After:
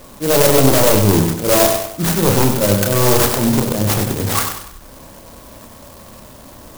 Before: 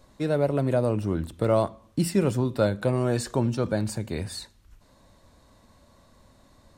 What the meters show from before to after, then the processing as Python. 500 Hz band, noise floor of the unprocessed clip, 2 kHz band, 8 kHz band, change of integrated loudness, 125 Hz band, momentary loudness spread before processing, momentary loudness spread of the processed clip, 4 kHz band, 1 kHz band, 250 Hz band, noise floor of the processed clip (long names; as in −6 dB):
+10.0 dB, −59 dBFS, +15.0 dB, +21.0 dB, +12.0 dB, +9.0 dB, 8 LU, 7 LU, +18.5 dB, +13.5 dB, +9.5 dB, −40 dBFS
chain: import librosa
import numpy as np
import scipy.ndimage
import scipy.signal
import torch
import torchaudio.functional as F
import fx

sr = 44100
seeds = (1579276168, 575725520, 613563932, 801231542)

p1 = fx.low_shelf(x, sr, hz=180.0, db=-7.5)
p2 = fx.auto_swell(p1, sr, attack_ms=156.0)
p3 = fx.fold_sine(p2, sr, drive_db=15, ceiling_db=-11.0)
p4 = p2 + (p3 * librosa.db_to_amplitude(-6.5))
p5 = fx.doubler(p4, sr, ms=30.0, db=-5.0)
p6 = fx.echo_feedback(p5, sr, ms=96, feedback_pct=42, wet_db=-6)
p7 = np.repeat(p6[::8], 8)[:len(p6)]
p8 = fx.clock_jitter(p7, sr, seeds[0], jitter_ms=0.13)
y = p8 * librosa.db_to_amplitude(4.5)